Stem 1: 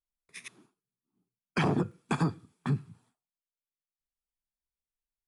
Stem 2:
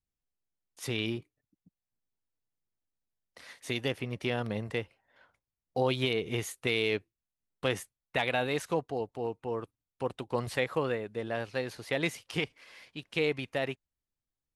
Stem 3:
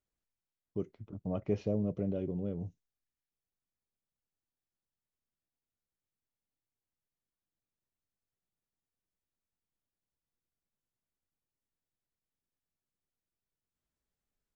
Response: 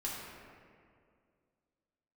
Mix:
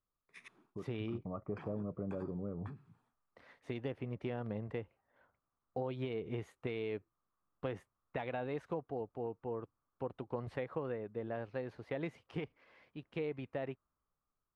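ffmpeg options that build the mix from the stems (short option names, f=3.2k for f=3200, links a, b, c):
-filter_complex "[0:a]equalizer=f=1.2k:w=0.34:g=8.5,acompressor=threshold=-26dB:ratio=6,volume=-12dB[a];[1:a]lowpass=f=1.3k:p=1,acompressor=threshold=-31dB:ratio=4,volume=-3.5dB[b];[2:a]dynaudnorm=f=440:g=7:m=11dB,lowpass=f=1.2k:t=q:w=7.1,volume=-6dB[c];[a][c]amix=inputs=2:normalize=0,acompressor=threshold=-45dB:ratio=2,volume=0dB[d];[b][d]amix=inputs=2:normalize=0,highshelf=f=3.3k:g=-11"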